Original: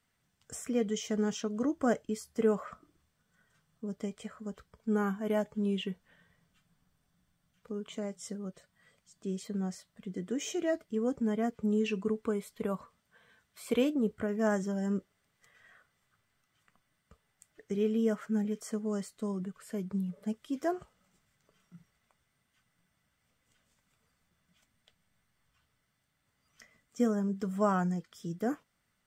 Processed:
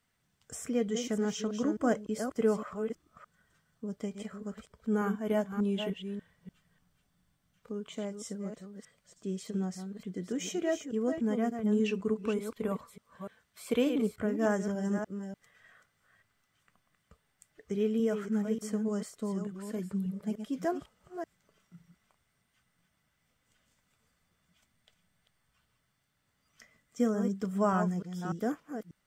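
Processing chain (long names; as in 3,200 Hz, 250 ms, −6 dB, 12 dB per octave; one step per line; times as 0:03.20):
delay that plays each chunk backwards 295 ms, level −7.5 dB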